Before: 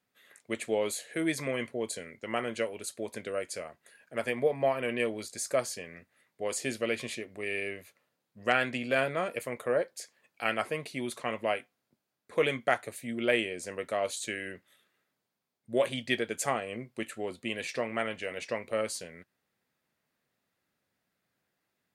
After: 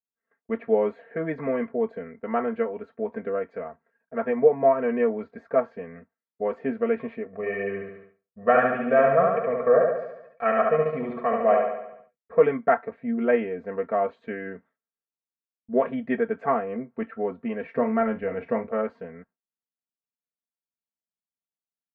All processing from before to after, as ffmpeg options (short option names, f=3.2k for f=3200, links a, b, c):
-filter_complex "[0:a]asettb=1/sr,asplit=3[a][b][c];[a]atrim=end=7.264[d];[b]atrim=start=7.26:end=12.39,asetpts=PTS-STARTPTS,afade=t=in:d=0.004:c=qsin,afade=t=out:st=5.126:d=0.004:c=qsin,aecho=1:1:1.7:0.57,atrim=end_sample=226233,aecho=1:1:71|142|213|284|355|426|497|568:0.708|0.396|0.222|0.124|0.0696|0.039|0.0218|0.0122,atrim=end_sample=226233[e];[c]atrim=start=12.386[f];[d][e]acrossfade=d=0.004:c1=hsin:c2=qsin[g];[g][f]acrossfade=d=0.004:c1=qsin:c2=hsin,asettb=1/sr,asplit=3[h][i][j];[h]atrim=end=17.754[k];[i]atrim=start=17.75:end=18.67,asetpts=PTS-STARTPTS,afade=t=in:d=0.004:c=qsin,afade=t=out:st=0.916:d=0.004:c=qsin,lowshelf=f=170:g=12,asplit=2[l][m];[m]adelay=41,volume=-11.5dB[n];[l][n]amix=inputs=2:normalize=0,atrim=end_sample=40572[o];[j]atrim=start=18.666[p];[k][o]acrossfade=d=0.004:c1=hsin:c2=qsin[q];[q][p]acrossfade=d=0.004:c1=qsin:c2=hsin,lowpass=f=1.5k:w=0.5412,lowpass=f=1.5k:w=1.3066,agate=range=-33dB:threshold=-53dB:ratio=3:detection=peak,aecho=1:1:4.4:0.94,volume=4.5dB"